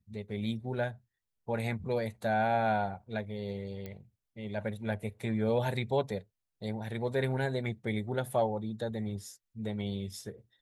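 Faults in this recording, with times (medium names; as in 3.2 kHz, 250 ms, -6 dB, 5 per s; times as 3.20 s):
3.86 s: pop -27 dBFS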